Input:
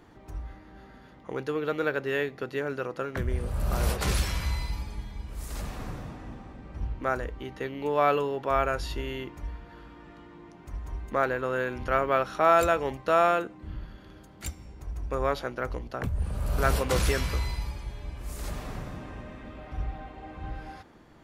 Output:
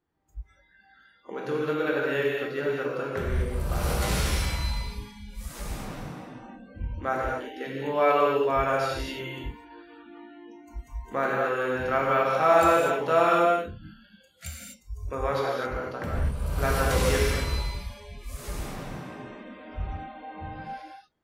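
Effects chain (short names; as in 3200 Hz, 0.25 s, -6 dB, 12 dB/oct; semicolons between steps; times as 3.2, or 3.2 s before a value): non-linear reverb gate 0.28 s flat, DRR -4 dB; spectral noise reduction 25 dB; gain -3 dB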